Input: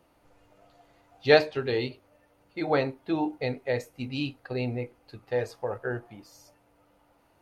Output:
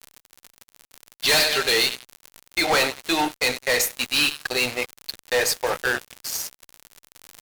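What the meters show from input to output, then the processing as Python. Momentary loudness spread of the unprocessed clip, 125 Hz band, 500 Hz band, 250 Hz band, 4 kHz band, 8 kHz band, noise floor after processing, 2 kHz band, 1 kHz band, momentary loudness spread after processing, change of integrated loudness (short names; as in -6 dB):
15 LU, -6.5 dB, 0.0 dB, -0.5 dB, +16.0 dB, n/a, -81 dBFS, +11.0 dB, +7.0 dB, 11 LU, +7.0 dB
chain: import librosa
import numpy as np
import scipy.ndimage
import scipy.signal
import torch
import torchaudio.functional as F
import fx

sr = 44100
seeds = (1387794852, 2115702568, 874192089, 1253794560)

p1 = np.diff(x, prepend=0.0)
p2 = fx.dmg_crackle(p1, sr, seeds[0], per_s=110.0, level_db=-55.0)
p3 = p2 + fx.echo_feedback(p2, sr, ms=96, feedback_pct=48, wet_db=-17.0, dry=0)
p4 = fx.fuzz(p3, sr, gain_db=50.0, gate_db=-58.0)
y = p4 * librosa.db_to_amplitude(-3.0)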